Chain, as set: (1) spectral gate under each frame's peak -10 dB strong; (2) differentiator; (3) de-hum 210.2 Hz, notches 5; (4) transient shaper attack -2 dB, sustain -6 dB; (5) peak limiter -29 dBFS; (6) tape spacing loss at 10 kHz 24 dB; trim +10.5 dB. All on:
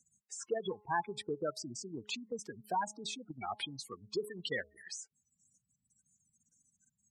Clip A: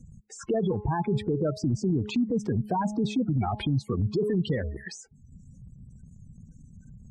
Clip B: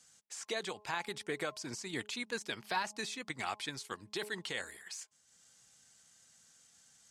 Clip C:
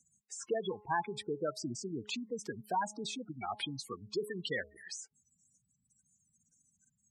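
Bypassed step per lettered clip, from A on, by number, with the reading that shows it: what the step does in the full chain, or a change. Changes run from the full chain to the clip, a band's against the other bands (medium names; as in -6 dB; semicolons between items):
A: 2, 125 Hz band +21.5 dB; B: 1, 2 kHz band +5.0 dB; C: 4, 125 Hz band +3.0 dB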